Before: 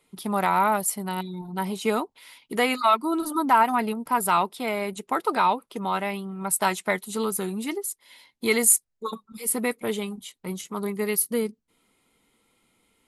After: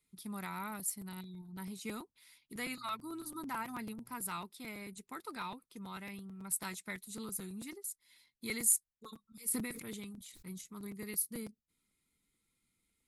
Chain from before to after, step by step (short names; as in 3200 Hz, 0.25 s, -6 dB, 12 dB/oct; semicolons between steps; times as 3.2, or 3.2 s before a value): bell 3000 Hz -8 dB 0.27 oct; 2.55–4.14 buzz 120 Hz, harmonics 8, -53 dBFS -3 dB/oct; passive tone stack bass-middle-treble 6-0-2; crackling interface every 0.11 s, samples 256, repeat, from 0.79; 9.42–10.58 sustainer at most 48 dB/s; gain +4 dB